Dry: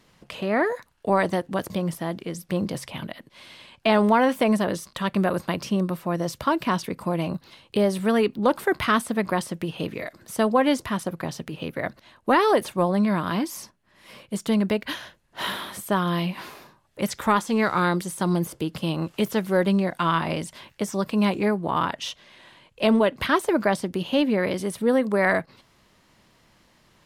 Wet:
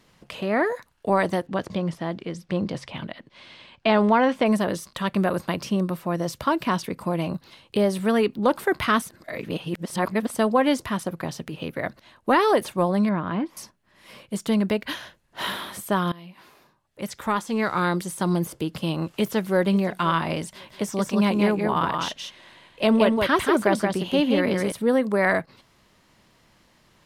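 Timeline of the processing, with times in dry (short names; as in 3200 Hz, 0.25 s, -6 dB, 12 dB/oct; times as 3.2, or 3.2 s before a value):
1.47–4.46 LPF 5200 Hz
9.02–10.35 reverse
13.09–13.57 air absorption 470 m
16.12–18.11 fade in, from -21.5 dB
19.11–19.59 echo throw 0.53 s, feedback 25%, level -17 dB
20.52–24.72 echo 0.175 s -4 dB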